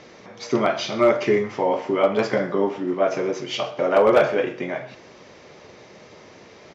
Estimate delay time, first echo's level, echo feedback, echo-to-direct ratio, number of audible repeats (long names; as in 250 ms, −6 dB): 125 ms, −21.5 dB, 33%, −21.0 dB, 2